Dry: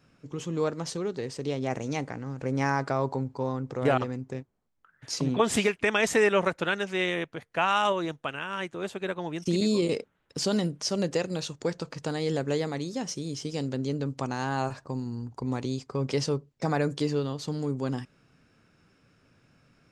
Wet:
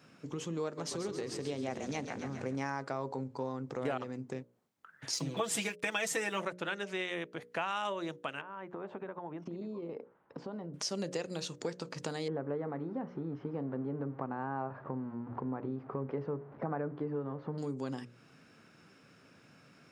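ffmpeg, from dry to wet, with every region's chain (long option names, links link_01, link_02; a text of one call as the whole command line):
ffmpeg -i in.wav -filter_complex "[0:a]asettb=1/sr,asplit=3[link_01][link_02][link_03];[link_01]atrim=end=0.644[link_04];[link_02]atrim=start=0.64:end=2.56,asetpts=PTS-STARTPTS,afade=type=in:duration=0.004:curve=qsin,afade=type=out:start_time=1.916:duration=0.004:curve=qsin,highshelf=frequency=9200:gain=4,asplit=9[link_05][link_06][link_07][link_08][link_09][link_10][link_11][link_12][link_13];[link_06]adelay=135,afreqshift=-33,volume=-9dB[link_14];[link_07]adelay=270,afreqshift=-66,volume=-13.2dB[link_15];[link_08]adelay=405,afreqshift=-99,volume=-17.3dB[link_16];[link_09]adelay=540,afreqshift=-132,volume=-21.5dB[link_17];[link_10]adelay=675,afreqshift=-165,volume=-25.6dB[link_18];[link_11]adelay=810,afreqshift=-198,volume=-29.8dB[link_19];[link_12]adelay=945,afreqshift=-231,volume=-33.9dB[link_20];[link_13]adelay=1080,afreqshift=-264,volume=-38.1dB[link_21];[link_05][link_14][link_15][link_16][link_17][link_18][link_19][link_20][link_21]amix=inputs=9:normalize=0,atrim=end_sample=84672[link_22];[link_03]atrim=start=2.556[link_23];[link_04][link_22]acrossfade=duration=0.004:curve1=hsin:curve2=qsin[link_24];[link_24][link_23]acrossfade=duration=0.004:curve1=qsin:curve2=hsin,asettb=1/sr,asplit=3[link_25][link_26][link_27];[link_25]atrim=end=5.134[link_28];[link_26]atrim=start=5.13:end=6.45,asetpts=PTS-STARTPTS,afade=type=in:duration=0.004:curve=qsin,afade=type=out:start_time=1.316:duration=0.004:curve=qsin,aemphasis=mode=production:type=cd,aecho=1:1:6.1:0.72,atrim=end_sample=58212,aeval=exprs='sgn(val(0))*max(abs(val(0))-0.00376,0)':channel_layout=same[link_29];[link_27]atrim=start=6.446[link_30];[link_28][link_29]acrossfade=duration=0.004:curve1=hsin:curve2=qsin[link_31];[link_31][link_30]acrossfade=duration=0.004:curve1=qsin:curve2=hsin,asettb=1/sr,asplit=3[link_32][link_33][link_34];[link_32]atrim=end=8.414[link_35];[link_33]atrim=start=8.41:end=10.74,asetpts=PTS-STARTPTS,afade=type=in:duration=0.004:curve=qsin,afade=type=out:start_time=2.326:duration=0.004:curve=qsin,equalizer=frequency=940:width_type=o:width=0.91:gain=7,acompressor=threshold=-39dB:ratio=5:attack=3.2:release=140:knee=1:detection=peak,lowpass=1300[link_36];[link_34]atrim=start=10.736[link_37];[link_35][link_36]acrossfade=duration=0.004:curve1=hsin:curve2=qsin[link_38];[link_38][link_37]acrossfade=duration=0.004:curve1=qsin:curve2=hsin,asettb=1/sr,asplit=3[link_39][link_40][link_41];[link_39]atrim=end=12.284[link_42];[link_40]atrim=start=12.28:end=17.58,asetpts=PTS-STARTPTS,afade=type=in:duration=0.004:curve=qsin,afade=type=out:start_time=5.296:duration=0.004:curve=qsin,aeval=exprs='val(0)+0.5*0.00944*sgn(val(0))':channel_layout=same,lowpass=frequency=1400:width=0.5412,lowpass=frequency=1400:width=1.3066,aemphasis=mode=production:type=75kf[link_43];[link_41]atrim=start=17.576[link_44];[link_42][link_43]acrossfade=duration=0.004:curve1=hsin:curve2=qsin[link_45];[link_45][link_44]acrossfade=duration=0.004:curve1=qsin:curve2=hsin,highpass=150,bandreject=frequency=60:width_type=h:width=6,bandreject=frequency=120:width_type=h:width=6,bandreject=frequency=180:width_type=h:width=6,bandreject=frequency=240:width_type=h:width=6,bandreject=frequency=300:width_type=h:width=6,bandreject=frequency=360:width_type=h:width=6,bandreject=frequency=420:width_type=h:width=6,bandreject=frequency=480:width_type=h:width=6,bandreject=frequency=540:width_type=h:width=6,bandreject=frequency=600:width_type=h:width=6,acompressor=threshold=-44dB:ratio=2.5,volume=4.5dB" out.wav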